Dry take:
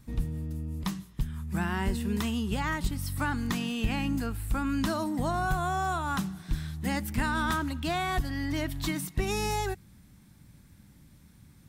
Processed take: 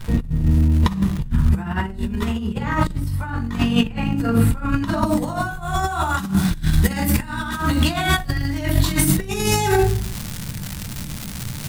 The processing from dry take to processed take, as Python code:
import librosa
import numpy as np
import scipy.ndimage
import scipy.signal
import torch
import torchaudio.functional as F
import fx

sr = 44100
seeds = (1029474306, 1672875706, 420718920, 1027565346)

y = fx.peak_eq(x, sr, hz=5500.0, db=-3.5, octaves=0.29)
y = fx.room_shoebox(y, sr, seeds[0], volume_m3=500.0, walls='furnished', distance_m=4.7)
y = fx.dmg_crackle(y, sr, seeds[1], per_s=270.0, level_db=-34.0)
y = fx.high_shelf(y, sr, hz=3400.0, db=fx.steps((0.0, -7.5), (5.05, 5.0)))
y = fx.over_compress(y, sr, threshold_db=-26.0, ratio=-0.5)
y = y * 10.0 ** (7.5 / 20.0)